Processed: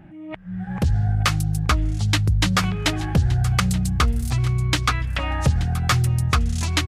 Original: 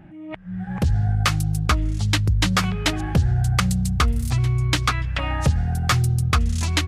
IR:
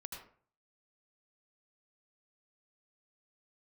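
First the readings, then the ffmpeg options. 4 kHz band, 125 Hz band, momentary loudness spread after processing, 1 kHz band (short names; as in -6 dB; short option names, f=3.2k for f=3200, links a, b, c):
0.0 dB, 0.0 dB, 5 LU, 0.0 dB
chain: -af "aecho=1:1:878:0.15"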